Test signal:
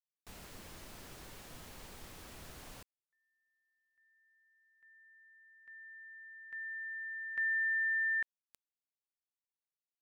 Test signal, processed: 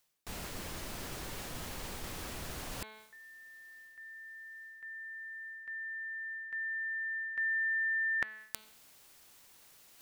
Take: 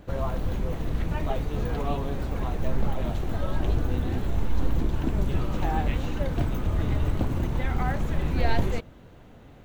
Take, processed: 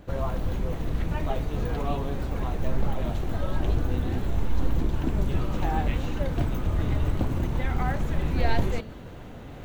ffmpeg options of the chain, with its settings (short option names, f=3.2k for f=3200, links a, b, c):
-af "bandreject=f=216.8:t=h:w=4,bandreject=f=433.6:t=h:w=4,bandreject=f=650.4:t=h:w=4,bandreject=f=867.2:t=h:w=4,bandreject=f=1.084k:t=h:w=4,bandreject=f=1.3008k:t=h:w=4,bandreject=f=1.5176k:t=h:w=4,bandreject=f=1.7344k:t=h:w=4,bandreject=f=1.9512k:t=h:w=4,bandreject=f=2.168k:t=h:w=4,bandreject=f=2.3848k:t=h:w=4,bandreject=f=2.6016k:t=h:w=4,bandreject=f=2.8184k:t=h:w=4,bandreject=f=3.0352k:t=h:w=4,bandreject=f=3.252k:t=h:w=4,bandreject=f=3.4688k:t=h:w=4,bandreject=f=3.6856k:t=h:w=4,bandreject=f=3.9024k:t=h:w=4,bandreject=f=4.1192k:t=h:w=4,bandreject=f=4.336k:t=h:w=4,bandreject=f=4.5528k:t=h:w=4,areverse,acompressor=mode=upward:threshold=-31dB:ratio=2.5:attack=14:release=408:knee=2.83:detection=peak,areverse"